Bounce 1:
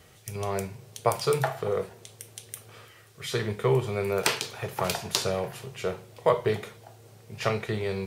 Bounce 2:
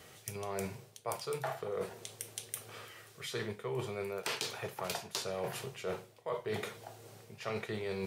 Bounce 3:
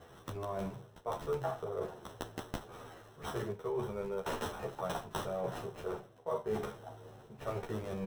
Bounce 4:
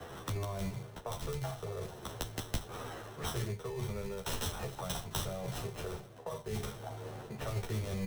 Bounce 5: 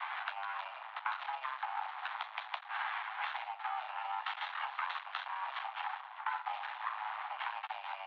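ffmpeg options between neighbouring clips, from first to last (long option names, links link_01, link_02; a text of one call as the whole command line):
ffmpeg -i in.wav -af "highpass=frequency=190:poles=1,areverse,acompressor=threshold=-35dB:ratio=12,areverse,volume=1dB" out.wav
ffmpeg -i in.wav -filter_complex "[0:a]acrossover=split=1700[link_01][link_02];[link_02]acrusher=samples=19:mix=1:aa=0.000001[link_03];[link_01][link_03]amix=inputs=2:normalize=0,asplit=2[link_04][link_05];[link_05]adelay=11.6,afreqshift=-1.5[link_06];[link_04][link_06]amix=inputs=2:normalize=1,volume=4dB" out.wav
ffmpeg -i in.wav -filter_complex "[0:a]acrossover=split=140|3000[link_01][link_02][link_03];[link_02]acompressor=threshold=-49dB:ratio=10[link_04];[link_01][link_04][link_03]amix=inputs=3:normalize=0,acrossover=split=340|600|7900[link_05][link_06][link_07][link_08];[link_05]acrusher=samples=20:mix=1:aa=0.000001[link_09];[link_09][link_06][link_07][link_08]amix=inputs=4:normalize=0,volume=9.5dB" out.wav
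ffmpeg -i in.wav -af "acompressor=threshold=-41dB:ratio=4,aeval=exprs='max(val(0),0)':channel_layout=same,highpass=frequency=390:width_type=q:width=0.5412,highpass=frequency=390:width_type=q:width=1.307,lowpass=frequency=2900:width_type=q:width=0.5176,lowpass=frequency=2900:width_type=q:width=0.7071,lowpass=frequency=2900:width_type=q:width=1.932,afreqshift=390,volume=13.5dB" out.wav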